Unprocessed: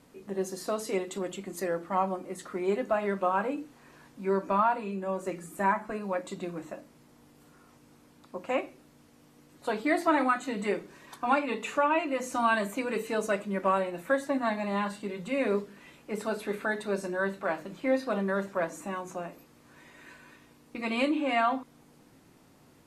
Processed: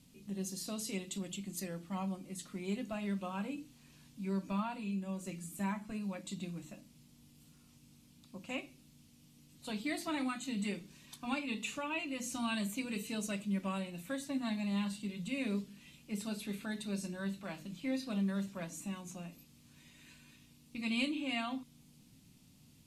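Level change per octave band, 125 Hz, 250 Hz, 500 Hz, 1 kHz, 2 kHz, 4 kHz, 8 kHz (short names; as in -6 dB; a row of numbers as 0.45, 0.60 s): -0.5, -3.5, -15.5, -16.0, -10.0, -0.5, 0.0 dB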